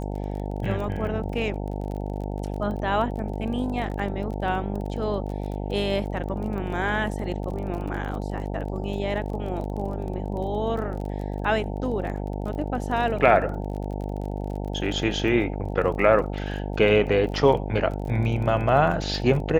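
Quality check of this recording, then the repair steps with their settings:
buzz 50 Hz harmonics 18 -30 dBFS
crackle 28/s -33 dBFS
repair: de-click; de-hum 50 Hz, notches 18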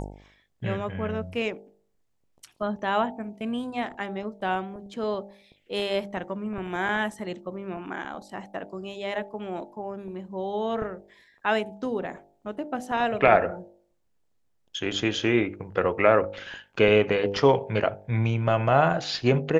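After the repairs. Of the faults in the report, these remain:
none

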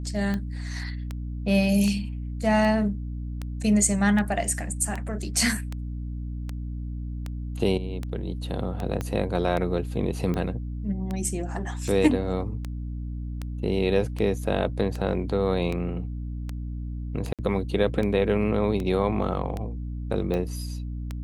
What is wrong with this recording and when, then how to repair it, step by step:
hum 60 Hz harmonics 5 -32 dBFS
tick 78 rpm -18 dBFS
9.01 pop -16 dBFS
17.33–17.39 gap 57 ms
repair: de-click; de-hum 60 Hz, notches 5; interpolate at 17.33, 57 ms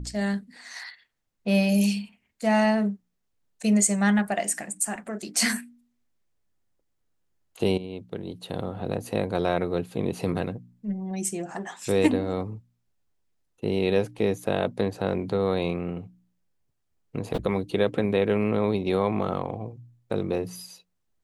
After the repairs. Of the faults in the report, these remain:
9.01 pop

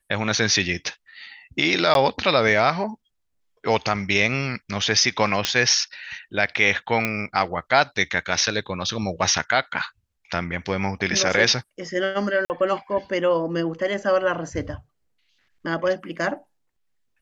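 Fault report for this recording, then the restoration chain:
1.94–1.95 gap 12 ms
5.45 pop -3 dBFS
7.05 pop -8 dBFS
12.45–12.5 gap 49 ms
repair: de-click; interpolate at 1.94, 12 ms; interpolate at 12.45, 49 ms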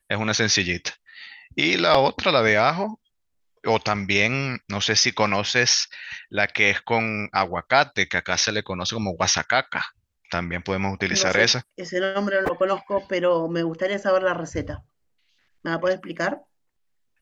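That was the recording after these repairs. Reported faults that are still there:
none

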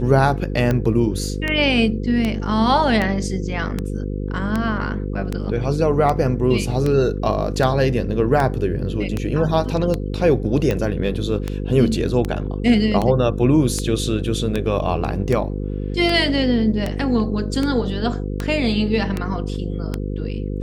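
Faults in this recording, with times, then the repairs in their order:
buzz 50 Hz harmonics 10 -25 dBFS
tick 78 rpm -9 dBFS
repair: de-click; de-hum 50 Hz, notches 10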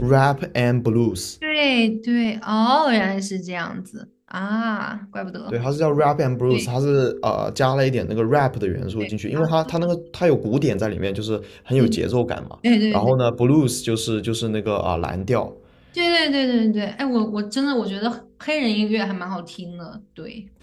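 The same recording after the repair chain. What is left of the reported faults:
none

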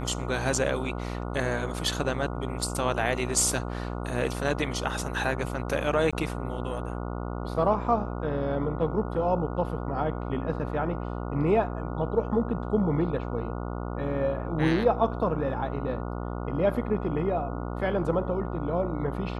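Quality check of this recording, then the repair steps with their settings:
buzz 60 Hz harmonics 24 -33 dBFS
6.11–6.13 gap 16 ms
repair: de-hum 60 Hz, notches 24; interpolate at 6.11, 16 ms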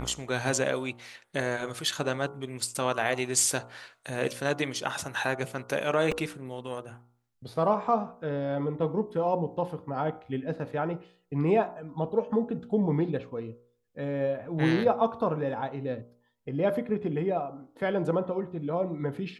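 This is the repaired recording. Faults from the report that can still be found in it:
none

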